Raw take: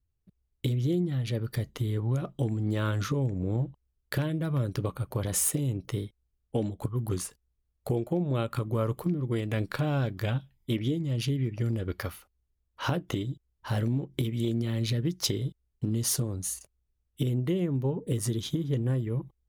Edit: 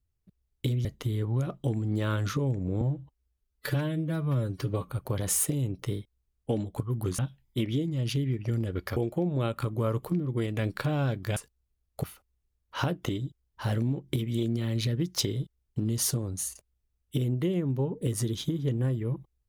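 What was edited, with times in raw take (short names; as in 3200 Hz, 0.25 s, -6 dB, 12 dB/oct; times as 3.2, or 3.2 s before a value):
0.85–1.6 cut
3.56–4.95 stretch 1.5×
7.24–7.91 swap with 10.31–12.09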